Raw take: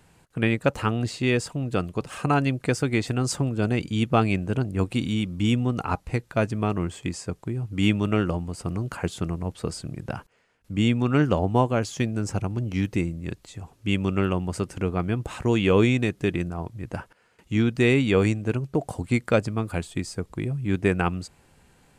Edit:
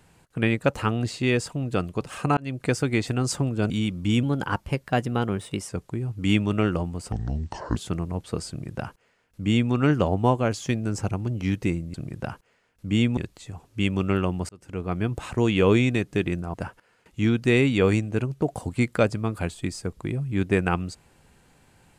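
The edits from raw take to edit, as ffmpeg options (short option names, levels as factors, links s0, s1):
-filter_complex "[0:a]asplit=11[s0][s1][s2][s3][s4][s5][s6][s7][s8][s9][s10];[s0]atrim=end=2.37,asetpts=PTS-STARTPTS,afade=t=out:st=2.366:d=0.004:c=hsin[s11];[s1]atrim=start=2.37:end=3.702,asetpts=PTS-STARTPTS,afade=t=in:d=0.27[s12];[s2]atrim=start=5.048:end=5.584[s13];[s3]atrim=start=5.58:end=7.23,asetpts=PTS-STARTPTS,asetrate=49833,aresample=44100[s14];[s4]atrim=start=7.226:end=8.664[s15];[s5]atrim=start=8.66:end=9.07,asetpts=PTS-STARTPTS,asetrate=28224,aresample=44100[s16];[s6]atrim=start=9.066:end=13.252[s17];[s7]atrim=start=9.798:end=11.032[s18];[s8]atrim=start=13.248:end=14.57,asetpts=PTS-STARTPTS,afade=t=out:st=1.318:d=0.004:c=hsin[s19];[s9]atrim=start=14.57:end=16.622,asetpts=PTS-STARTPTS,afade=t=in:d=0.53[s20];[s10]atrim=start=16.868[s21];[s11][s12]concat=n=2:v=0:a=1[s22];[s22][s13]acrossfade=d=0.004:c1=hsin:c2=hsin[s23];[s23][s14]acrossfade=d=0.004:c1=hsin:c2=hsin[s24];[s24][s15]acrossfade=d=0.004:c1=hsin:c2=hsin[s25];[s25][s16]acrossfade=d=0.004:c1=hsin:c2=hsin[s26];[s26][s17]acrossfade=d=0.004:c1=hsin:c2=hsin[s27];[s27][s18]acrossfade=d=0.004:c1=hsin:c2=hsin[s28];[s19][s20]concat=n=2:v=0:a=1[s29];[s28][s29]acrossfade=d=0.004:c1=hsin:c2=hsin[s30];[s30][s21]acrossfade=d=0.004:c1=hsin:c2=hsin"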